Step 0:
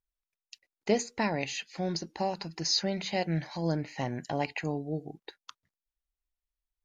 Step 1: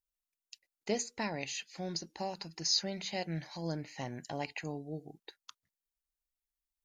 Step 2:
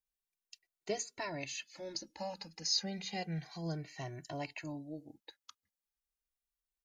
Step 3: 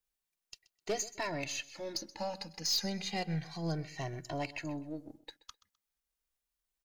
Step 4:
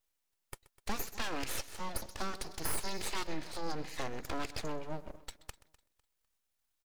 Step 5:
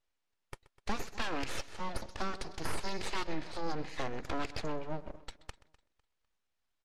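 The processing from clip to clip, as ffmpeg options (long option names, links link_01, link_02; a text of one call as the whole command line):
ffmpeg -i in.wav -af "highshelf=frequency=4500:gain=10,volume=-7.5dB" out.wav
ffmpeg -i in.wav -filter_complex "[0:a]asplit=2[link_01][link_02];[link_02]adelay=2.1,afreqshift=-0.32[link_03];[link_01][link_03]amix=inputs=2:normalize=1" out.wav
ffmpeg -i in.wav -af "aeval=exprs='if(lt(val(0),0),0.708*val(0),val(0))':channel_layout=same,aecho=1:1:128|256:0.112|0.0303,asoftclip=type=hard:threshold=-32dB,volume=5dB" out.wav
ffmpeg -i in.wav -af "acompressor=threshold=-37dB:ratio=2.5,aecho=1:1:251|502|753:0.0944|0.0321|0.0109,aeval=exprs='abs(val(0))':channel_layout=same,volume=5.5dB" out.wav
ffmpeg -i in.wav -af "adynamicsmooth=sensitivity=4.5:basefreq=5100,volume=2.5dB" -ar 44100 -c:a libmp3lame -b:a 80k out.mp3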